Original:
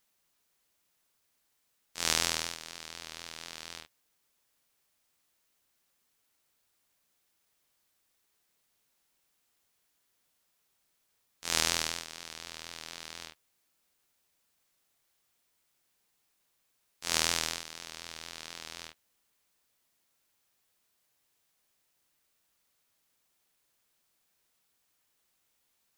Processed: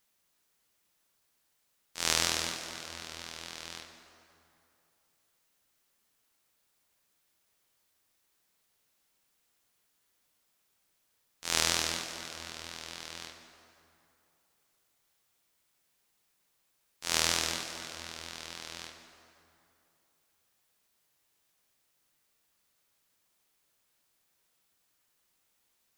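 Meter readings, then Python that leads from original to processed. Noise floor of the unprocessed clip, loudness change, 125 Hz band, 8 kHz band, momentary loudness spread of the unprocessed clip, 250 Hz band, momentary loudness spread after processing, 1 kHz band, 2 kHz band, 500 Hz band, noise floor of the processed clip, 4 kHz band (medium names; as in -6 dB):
-76 dBFS, +0.5 dB, +1.5 dB, +1.0 dB, 17 LU, +1.5 dB, 17 LU, +1.0 dB, +1.0 dB, +1.5 dB, -75 dBFS, +1.0 dB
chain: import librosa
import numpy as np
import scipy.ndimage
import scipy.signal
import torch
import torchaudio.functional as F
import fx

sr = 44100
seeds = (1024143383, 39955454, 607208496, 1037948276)

y = fx.rev_plate(x, sr, seeds[0], rt60_s=2.8, hf_ratio=0.6, predelay_ms=0, drr_db=5.5)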